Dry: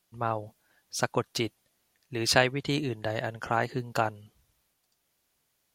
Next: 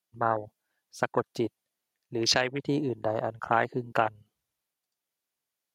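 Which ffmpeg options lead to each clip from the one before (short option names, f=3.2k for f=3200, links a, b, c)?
-af "afwtdn=0.0251,highpass=f=240:p=1,alimiter=limit=-14dB:level=0:latency=1:release=293,volume=4.5dB"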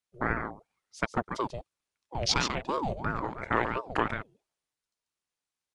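-af "aecho=1:1:140:0.447,aresample=22050,aresample=44100,aeval=exprs='val(0)*sin(2*PI*520*n/s+520*0.55/2.9*sin(2*PI*2.9*n/s))':c=same"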